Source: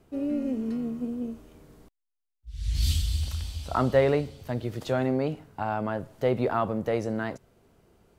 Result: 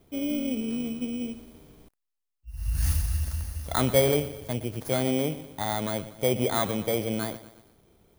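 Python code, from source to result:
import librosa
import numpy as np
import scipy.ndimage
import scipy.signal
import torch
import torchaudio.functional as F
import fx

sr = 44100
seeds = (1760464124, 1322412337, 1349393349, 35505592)

y = fx.bit_reversed(x, sr, seeds[0], block=16)
y = fx.echo_crushed(y, sr, ms=119, feedback_pct=55, bits=8, wet_db=-15.0)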